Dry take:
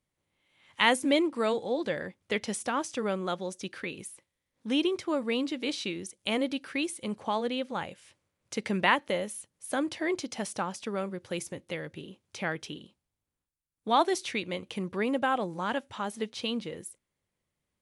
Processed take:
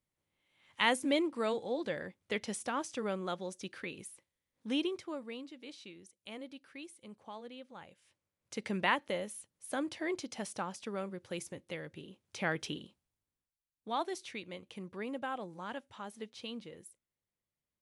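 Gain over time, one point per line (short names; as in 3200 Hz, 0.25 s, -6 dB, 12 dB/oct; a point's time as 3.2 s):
4.75 s -5.5 dB
5.49 s -17 dB
7.76 s -17 dB
8.64 s -6 dB
12.1 s -6 dB
12.67 s +1 dB
13.9 s -11 dB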